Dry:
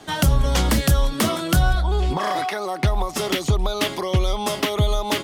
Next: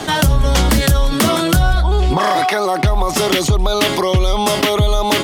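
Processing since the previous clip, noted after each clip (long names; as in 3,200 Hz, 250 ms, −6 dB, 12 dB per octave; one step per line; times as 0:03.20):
envelope flattener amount 50%
level +3 dB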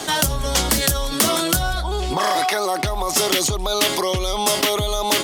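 bass and treble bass −7 dB, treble +8 dB
level −4.5 dB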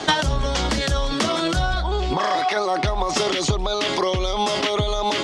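Bessel low-pass filter 4,400 Hz, order 4
brickwall limiter −13.5 dBFS, peak gain reduction 7.5 dB
transient designer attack +10 dB, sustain +6 dB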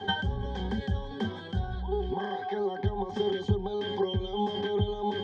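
resonances in every octave G, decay 0.11 s
level +2 dB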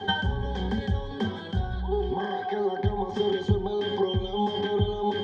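tape delay 65 ms, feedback 68%, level −12 dB, low-pass 4,100 Hz
level +3 dB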